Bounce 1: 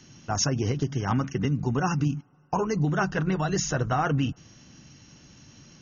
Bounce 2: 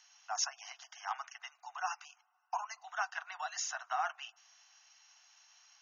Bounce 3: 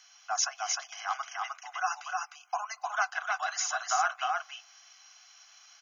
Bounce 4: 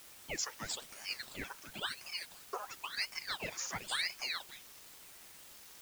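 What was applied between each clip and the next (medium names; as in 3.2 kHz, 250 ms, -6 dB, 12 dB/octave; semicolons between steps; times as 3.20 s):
steep high-pass 690 Hz 96 dB/octave; trim -7.5 dB
comb of notches 920 Hz; delay 306 ms -3 dB; trim +7.5 dB
in parallel at -8 dB: word length cut 6-bit, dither triangular; on the sum: ring modulator with a swept carrier 2 kHz, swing 90%, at 0.96 Hz; trim -8.5 dB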